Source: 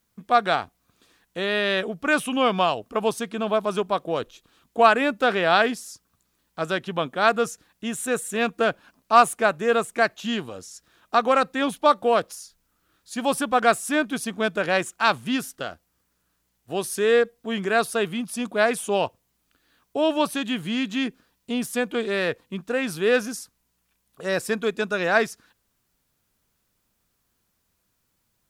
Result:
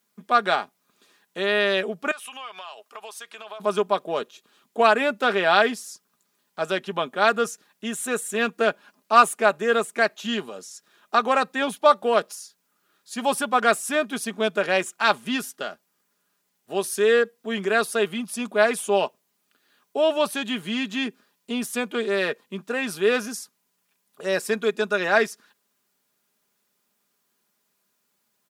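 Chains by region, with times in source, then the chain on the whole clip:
2.11–3.60 s: high-pass 930 Hz + compression 4:1, threshold -36 dBFS
whole clip: high-pass 250 Hz 12 dB/octave; comb 4.9 ms, depth 47%

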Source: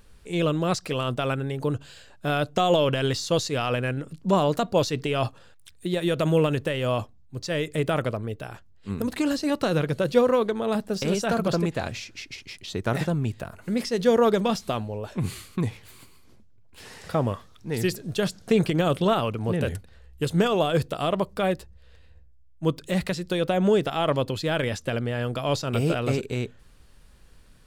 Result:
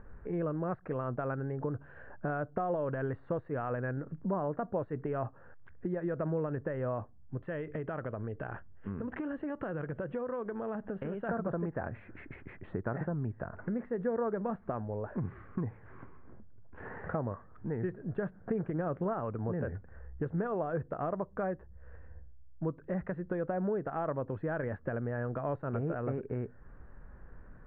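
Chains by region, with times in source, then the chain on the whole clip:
7.37–11.29 s: compression 2.5:1, threshold -35 dBFS + resonant low-pass 3.1 kHz, resonance Q 5.5
whole clip: elliptic low-pass 1.7 kHz, stop band 70 dB; compression 3:1, threshold -40 dBFS; trim +4 dB

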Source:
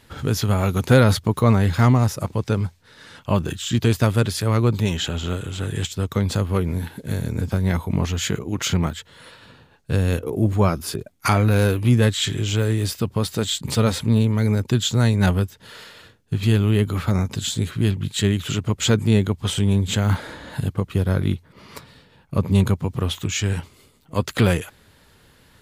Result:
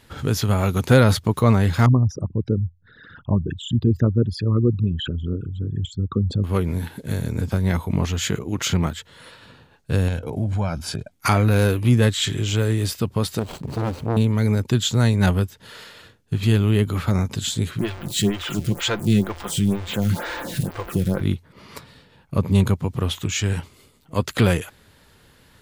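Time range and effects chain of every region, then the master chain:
1.86–6.44 s: resonances exaggerated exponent 3 + dynamic bell 1.2 kHz, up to +6 dB, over -47 dBFS, Q 1.9 + low-pass 2.5 kHz 6 dB/octave
10.08–11.12 s: low-pass 7.9 kHz + comb 1.3 ms, depth 58% + compression 4:1, threshold -20 dBFS
13.39–14.17 s: median filter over 25 samples + upward compressor, threshold -25 dBFS + transformer saturation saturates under 520 Hz
17.79–21.21 s: jump at every zero crossing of -25 dBFS + comb 5.8 ms, depth 39% + lamp-driven phase shifter 2.1 Hz
whole clip: none

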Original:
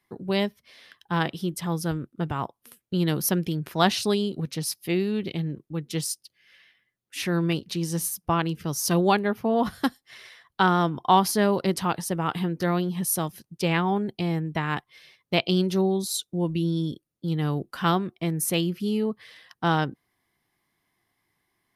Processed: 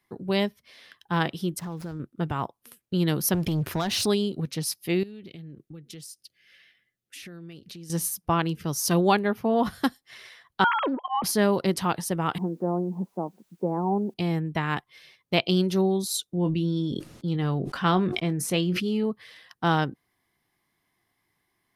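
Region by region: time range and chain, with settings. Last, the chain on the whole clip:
1.59–2.00 s: median filter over 15 samples + compression, threshold -31 dBFS
3.34–4.06 s: compression 12:1, threshold -27 dBFS + peaking EQ 94 Hz +10 dB 0.5 oct + waveshaping leveller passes 2
5.03–7.90 s: peaking EQ 970 Hz -13.5 dB 0.35 oct + compression 10:1, threshold -39 dBFS
10.64–11.24 s: formants replaced by sine waves + slow attack 229 ms + loudspeaker Doppler distortion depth 0.29 ms
12.38–14.14 s: elliptic band-pass 190–910 Hz, stop band 50 dB + word length cut 12-bit, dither triangular
16.35–19.04 s: distance through air 58 m + doubling 22 ms -13 dB + decay stretcher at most 41 dB/s
whole clip: none

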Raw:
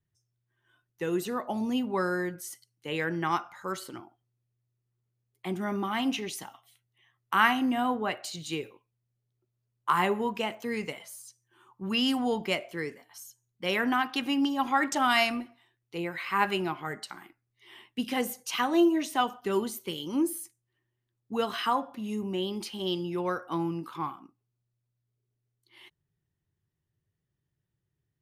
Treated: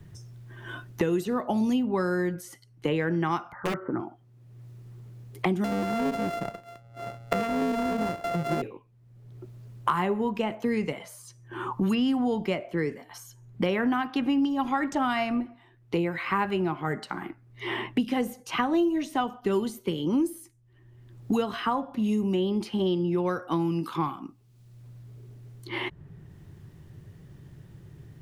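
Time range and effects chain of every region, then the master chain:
3.52–4.00 s: steep low-pass 1.9 kHz 48 dB/octave + upward compressor, threshold -44 dBFS + integer overflow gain 27 dB
5.64–8.62 s: sorted samples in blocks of 64 samples + compression 4:1, threshold -30 dBFS
whole clip: tilt EQ -2.5 dB/octave; three bands compressed up and down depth 100%

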